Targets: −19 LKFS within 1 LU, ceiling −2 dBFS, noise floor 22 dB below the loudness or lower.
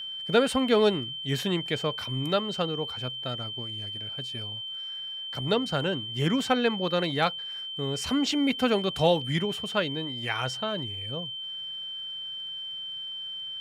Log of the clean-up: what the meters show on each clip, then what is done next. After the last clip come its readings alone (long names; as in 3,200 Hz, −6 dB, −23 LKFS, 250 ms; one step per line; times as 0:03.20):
crackle rate 28 per second; interfering tone 3,100 Hz; level of the tone −34 dBFS; integrated loudness −28.5 LKFS; sample peak −10.0 dBFS; target loudness −19.0 LKFS
→ click removal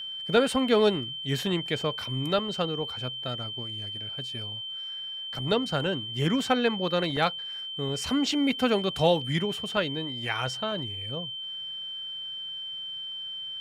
crackle rate 0.074 per second; interfering tone 3,100 Hz; level of the tone −34 dBFS
→ notch filter 3,100 Hz, Q 30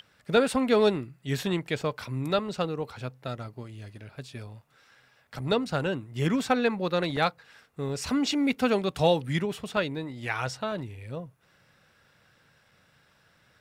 interfering tone none found; integrated loudness −28.5 LKFS; sample peak −10.0 dBFS; target loudness −19.0 LKFS
→ level +9.5 dB
brickwall limiter −2 dBFS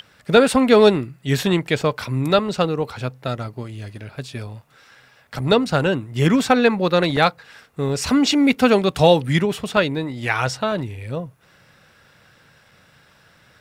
integrated loudness −19.0 LKFS; sample peak −2.0 dBFS; background noise floor −55 dBFS